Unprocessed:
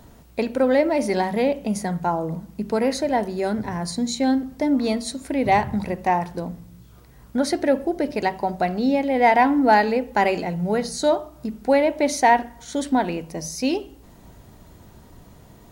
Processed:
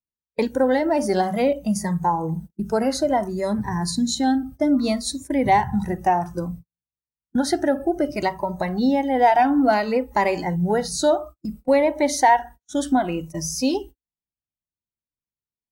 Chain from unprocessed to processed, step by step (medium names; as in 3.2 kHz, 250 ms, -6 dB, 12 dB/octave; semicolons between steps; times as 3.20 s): gate -36 dBFS, range -44 dB; spectral noise reduction 15 dB; dynamic bell 930 Hz, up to +5 dB, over -31 dBFS, Q 1.2; compression 1.5:1, threshold -25 dBFS, peak gain reduction 6.5 dB; Shepard-style phaser falling 0.6 Hz; trim +4.5 dB